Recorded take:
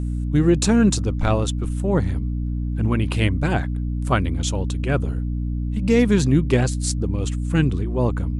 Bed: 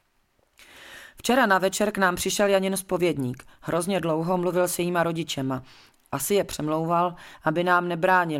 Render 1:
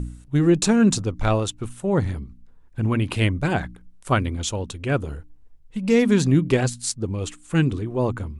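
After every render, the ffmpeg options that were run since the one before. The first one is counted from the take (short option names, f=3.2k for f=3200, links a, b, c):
-af "bandreject=f=60:t=h:w=4,bandreject=f=120:t=h:w=4,bandreject=f=180:t=h:w=4,bandreject=f=240:t=h:w=4,bandreject=f=300:t=h:w=4"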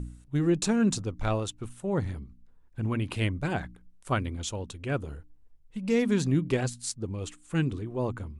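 -af "volume=-7.5dB"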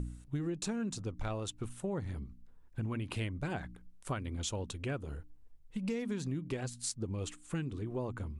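-af "acompressor=threshold=-33dB:ratio=10"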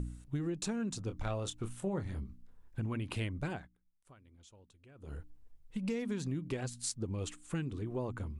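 -filter_complex "[0:a]asettb=1/sr,asplit=3[a][b][c];[a]atrim=end=1.054[d];[b]atrim=start=1.05:end=2.8,asetpts=PTS-STARTPTS,afade=t=in:d=0.004:c=qsin,afade=t=out:st=1.746:d=0.004:c=qsin,asplit=2[e][f];[f]adelay=26,volume=-8.5dB[g];[e][g]amix=inputs=2:normalize=0,atrim=end_sample=77175[h];[c]atrim=start=2.796[i];[d][h]acrossfade=d=0.004:c1=hsin:c2=qsin[j];[j][i]acrossfade=d=0.004:c1=qsin:c2=hsin,asplit=3[k][l][m];[k]atrim=end=3.69,asetpts=PTS-STARTPTS,afade=t=out:st=3.47:d=0.22:silence=0.0749894[n];[l]atrim=start=3.69:end=4.95,asetpts=PTS-STARTPTS,volume=-22.5dB[o];[m]atrim=start=4.95,asetpts=PTS-STARTPTS,afade=t=in:d=0.22:silence=0.0749894[p];[n][o][p]concat=n=3:v=0:a=1"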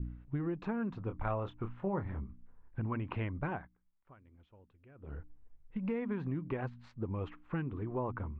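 -af "lowpass=f=2.3k:w=0.5412,lowpass=f=2.3k:w=1.3066,adynamicequalizer=threshold=0.00112:dfrequency=1000:dqfactor=1.7:tfrequency=1000:tqfactor=1.7:attack=5:release=100:ratio=0.375:range=4:mode=boostabove:tftype=bell"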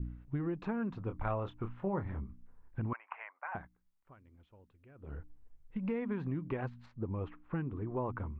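-filter_complex "[0:a]asettb=1/sr,asplit=3[a][b][c];[a]atrim=end=2.934[d];[b]atrim=start=2.93:end=3.55,asetpts=PTS-STARTPTS,afade=t=in:d=0.004:c=qsin,afade=t=out:st=0.616:d=0.004:c=qsin,asuperpass=centerf=1300:order=8:qfactor=0.77[e];[c]atrim=start=3.546[f];[d][e]acrossfade=d=0.004:c1=hsin:c2=qsin[g];[g][f]acrossfade=d=0.004:c1=qsin:c2=hsin,asettb=1/sr,asplit=3[h][i][j];[h]atrim=end=6.864[k];[i]atrim=start=6.86:end=7.97,asetpts=PTS-STARTPTS,afade=t=in:d=0.004:c=qsin,afade=t=out:st=1.106:d=0.004:c=qsin,highshelf=f=2.9k:g=-11.5[l];[j]atrim=start=7.966[m];[k][l]acrossfade=d=0.004:c1=hsin:c2=qsin[n];[n][m]acrossfade=d=0.004:c1=qsin:c2=hsin"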